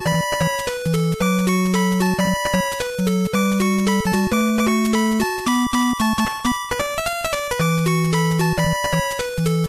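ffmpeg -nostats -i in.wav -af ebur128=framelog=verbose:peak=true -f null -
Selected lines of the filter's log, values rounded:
Integrated loudness:
  I:         -19.4 LUFS
  Threshold: -29.4 LUFS
Loudness range:
  LRA:         1.3 LU
  Threshold: -39.3 LUFS
  LRA low:   -19.9 LUFS
  LRA high:  -18.6 LUFS
True peak:
  Peak:       -5.8 dBFS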